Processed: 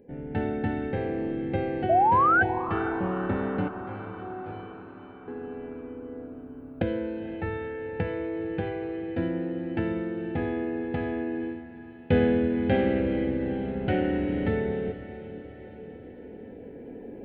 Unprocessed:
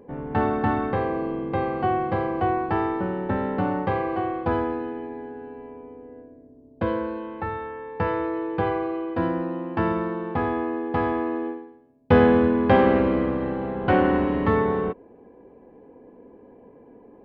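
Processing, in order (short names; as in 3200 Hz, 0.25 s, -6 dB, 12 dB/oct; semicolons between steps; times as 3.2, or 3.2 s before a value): recorder AGC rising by 5.4 dB/s; fixed phaser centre 2600 Hz, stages 4; 1.89–2.43 painted sound rise 640–1600 Hz -16 dBFS; 3.68–5.28 resonator 53 Hz, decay 0.82 s, harmonics all, mix 100%; diffused feedback echo 0.479 s, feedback 62%, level -13.5 dB; gain -4 dB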